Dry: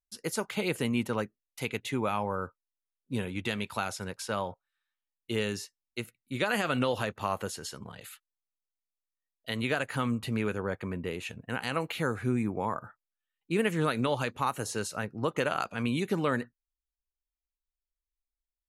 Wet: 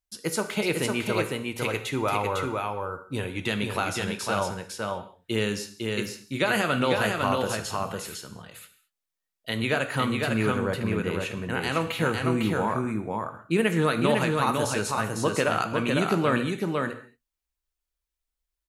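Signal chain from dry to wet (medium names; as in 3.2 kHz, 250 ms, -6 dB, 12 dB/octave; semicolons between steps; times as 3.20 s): 0.61–3.39 s: peaking EQ 200 Hz -10.5 dB 0.38 oct; delay 503 ms -3.5 dB; gated-style reverb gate 250 ms falling, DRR 8 dB; trim +4 dB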